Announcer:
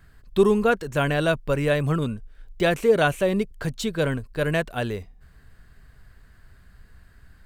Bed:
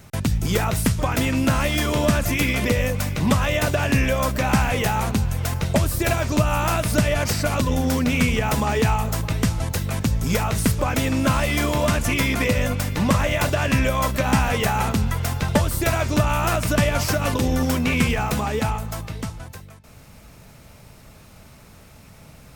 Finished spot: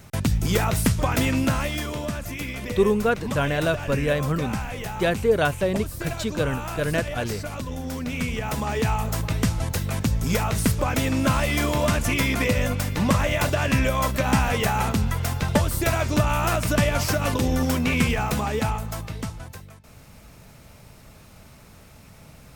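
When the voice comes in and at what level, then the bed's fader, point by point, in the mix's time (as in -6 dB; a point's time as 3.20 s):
2.40 s, -1.5 dB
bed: 1.31 s -0.5 dB
2.09 s -10.5 dB
7.80 s -10.5 dB
9.21 s -1.5 dB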